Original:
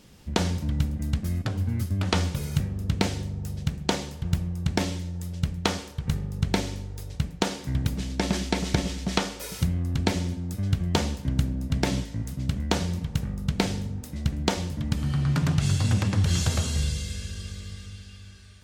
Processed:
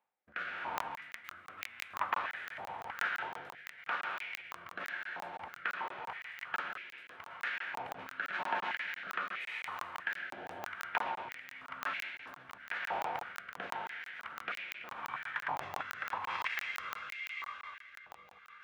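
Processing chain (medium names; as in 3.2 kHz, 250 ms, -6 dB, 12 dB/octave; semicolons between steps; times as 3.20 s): gate -38 dBFS, range -27 dB; distance through air 410 m; reverberation RT60 2.6 s, pre-delay 103 ms, DRR 4 dB; reverse; upward compressor, threshold -31 dBFS; reverse; formant shift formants -5 st; peak limiter -18 dBFS, peak gain reduction 8.5 dB; rotary cabinet horn 0.9 Hz; crackling interface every 0.17 s, samples 1024, zero, from 0.78 s; step-sequenced high-pass 3.1 Hz 830–2200 Hz; trim +2.5 dB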